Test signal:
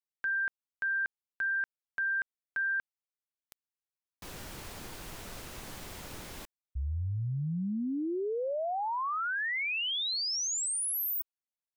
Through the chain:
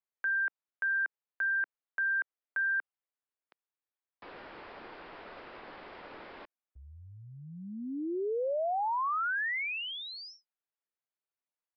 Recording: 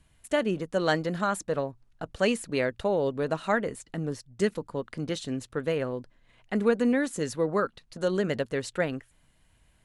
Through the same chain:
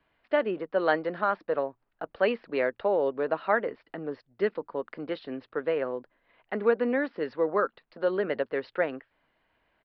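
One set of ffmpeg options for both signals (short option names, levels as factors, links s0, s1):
-filter_complex "[0:a]acrossover=split=290 2500:gain=0.1 1 0.141[s0][s1][s2];[s0][s1][s2]amix=inputs=3:normalize=0,aresample=11025,aresample=44100,volume=1.26"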